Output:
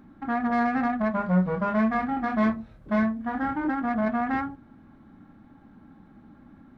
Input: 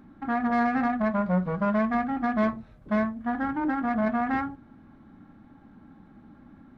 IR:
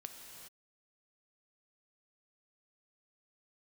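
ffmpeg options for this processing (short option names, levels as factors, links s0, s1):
-filter_complex "[0:a]asettb=1/sr,asplit=3[s0][s1][s2];[s0]atrim=end=1.134[s3];[s1]atrim=start=1.13:end=3.69,asetpts=PTS-STARTPTS,afade=t=in:d=0.004:c=qsin,afade=t=out:st=2.556:d=0.004:c=qsin,asplit=2[s4][s5];[s5]adelay=27,volume=0.631[s6];[s4][s6]amix=inputs=2:normalize=0,atrim=end_sample=112896[s7];[s2]atrim=start=3.686[s8];[s3][s7]acrossfade=d=0.004:c1=hsin:c2=qsin[s9];[s9][s8]acrossfade=d=0.004:c1=qsin:c2=hsin"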